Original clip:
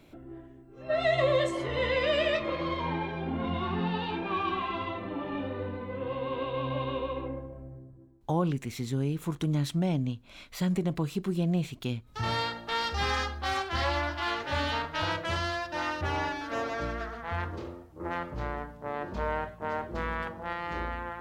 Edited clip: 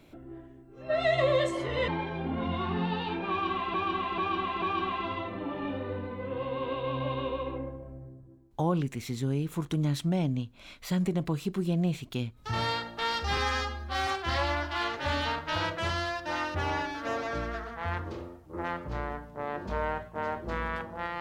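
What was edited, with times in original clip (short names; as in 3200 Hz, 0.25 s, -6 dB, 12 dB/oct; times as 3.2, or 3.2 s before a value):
1.88–2.9 cut
4.32–4.76 loop, 4 plays
13.07–13.54 stretch 1.5×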